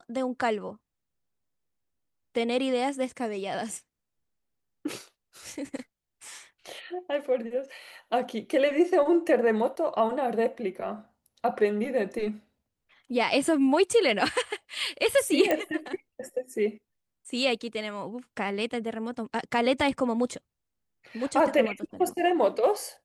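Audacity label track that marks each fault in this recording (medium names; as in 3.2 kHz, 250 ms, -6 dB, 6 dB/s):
15.510000	15.510000	pop -12 dBFS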